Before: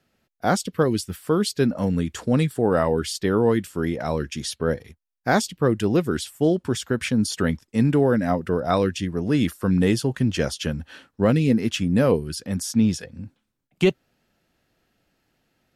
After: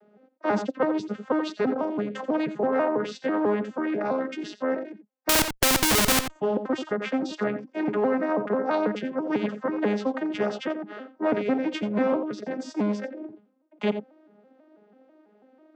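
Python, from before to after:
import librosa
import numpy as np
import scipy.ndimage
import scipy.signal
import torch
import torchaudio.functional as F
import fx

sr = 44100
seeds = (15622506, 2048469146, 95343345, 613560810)

p1 = fx.vocoder_arp(x, sr, chord='major triad', root=56, every_ms=164)
p2 = fx.vibrato(p1, sr, rate_hz=3.4, depth_cents=9.0)
p3 = np.clip(p2, -10.0 ** (-18.5 / 20.0), 10.0 ** (-18.5 / 20.0))
p4 = p2 + F.gain(torch.from_numpy(p3), -11.5).numpy()
p5 = fx.bandpass_q(p4, sr, hz=560.0, q=1.3)
p6 = fx.schmitt(p5, sr, flips_db=-35.5, at=(5.29, 6.3))
p7 = p6 + fx.echo_single(p6, sr, ms=87, db=-15.5, dry=0)
p8 = fx.spectral_comp(p7, sr, ratio=2.0)
y = F.gain(torch.from_numpy(p8), 6.0).numpy()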